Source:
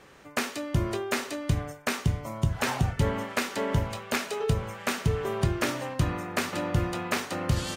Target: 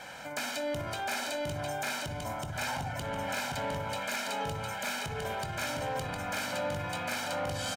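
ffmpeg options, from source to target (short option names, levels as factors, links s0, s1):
-filter_complex "[0:a]lowshelf=f=110:g=-11,aecho=1:1:1.3:0.89,asplit=2[s0][s1];[s1]aecho=0:1:708:0.501[s2];[s0][s2]amix=inputs=2:normalize=0,acompressor=threshold=0.0398:ratio=6,asoftclip=type=tanh:threshold=0.0398,alimiter=level_in=3.98:limit=0.0631:level=0:latency=1:release=84,volume=0.251,lowshelf=f=300:g=-7.5,asplit=2[s3][s4];[s4]adelay=61,lowpass=f=940:p=1,volume=0.562,asplit=2[s5][s6];[s6]adelay=61,lowpass=f=940:p=1,volume=0.53,asplit=2[s7][s8];[s8]adelay=61,lowpass=f=940:p=1,volume=0.53,asplit=2[s9][s10];[s10]adelay=61,lowpass=f=940:p=1,volume=0.53,asplit=2[s11][s12];[s12]adelay=61,lowpass=f=940:p=1,volume=0.53,asplit=2[s13][s14];[s14]adelay=61,lowpass=f=940:p=1,volume=0.53,asplit=2[s15][s16];[s16]adelay=61,lowpass=f=940:p=1,volume=0.53[s17];[s5][s7][s9][s11][s13][s15][s17]amix=inputs=7:normalize=0[s18];[s3][s18]amix=inputs=2:normalize=0,volume=2.51"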